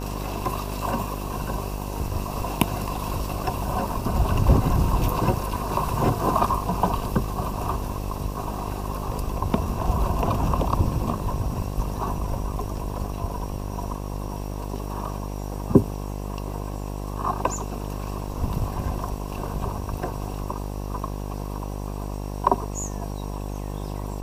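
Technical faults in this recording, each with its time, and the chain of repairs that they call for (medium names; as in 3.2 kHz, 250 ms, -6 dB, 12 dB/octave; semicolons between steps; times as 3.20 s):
buzz 50 Hz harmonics 22 -31 dBFS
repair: de-hum 50 Hz, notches 22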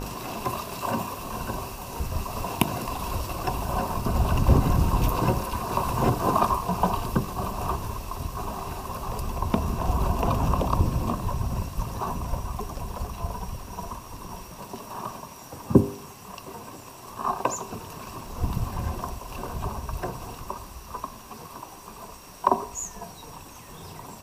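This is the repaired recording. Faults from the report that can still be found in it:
nothing left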